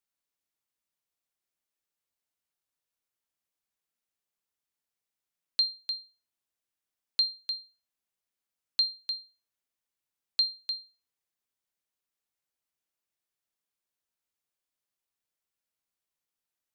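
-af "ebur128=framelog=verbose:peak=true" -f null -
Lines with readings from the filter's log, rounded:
Integrated loudness:
  I:         -30.7 LUFS
  Threshold: -41.2 LUFS
Loudness range:
  LRA:         3.5 LU
  Threshold: -54.8 LUFS
  LRA low:   -36.9 LUFS
  LRA high:  -33.4 LUFS
True peak:
  Peak:      -16.2 dBFS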